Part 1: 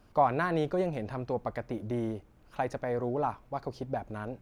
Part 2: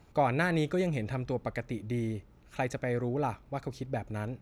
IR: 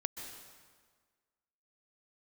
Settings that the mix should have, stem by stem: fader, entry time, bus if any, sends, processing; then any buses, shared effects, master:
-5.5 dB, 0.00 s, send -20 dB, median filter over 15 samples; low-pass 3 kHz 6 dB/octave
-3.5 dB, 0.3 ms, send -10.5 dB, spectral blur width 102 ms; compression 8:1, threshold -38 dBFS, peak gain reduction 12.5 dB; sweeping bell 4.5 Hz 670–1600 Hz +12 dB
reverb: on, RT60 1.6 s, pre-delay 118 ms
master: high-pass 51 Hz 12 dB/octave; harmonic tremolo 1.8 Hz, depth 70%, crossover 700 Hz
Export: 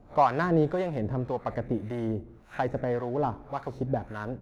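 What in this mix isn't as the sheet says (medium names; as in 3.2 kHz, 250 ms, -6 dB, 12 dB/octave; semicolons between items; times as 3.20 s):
stem 1 -5.5 dB -> +6.5 dB; master: missing high-pass 51 Hz 12 dB/octave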